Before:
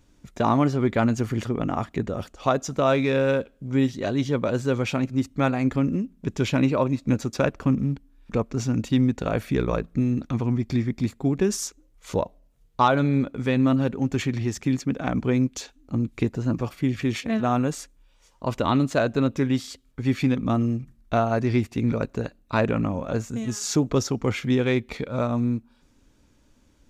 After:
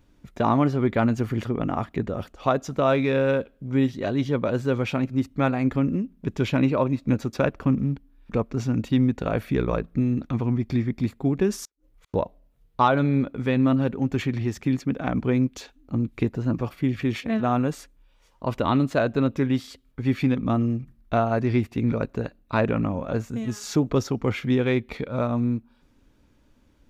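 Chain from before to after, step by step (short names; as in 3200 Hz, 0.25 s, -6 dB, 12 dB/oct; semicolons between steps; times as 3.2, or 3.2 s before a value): bell 7100 Hz -8.5 dB 1.2 oct; 11.65–12.14 flipped gate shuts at -40 dBFS, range -38 dB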